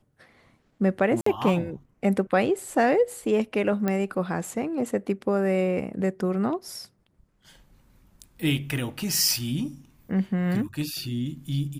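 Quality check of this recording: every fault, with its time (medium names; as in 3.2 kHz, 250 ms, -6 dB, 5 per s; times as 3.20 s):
1.21–1.26 s: dropout 54 ms
3.88 s: pop -13 dBFS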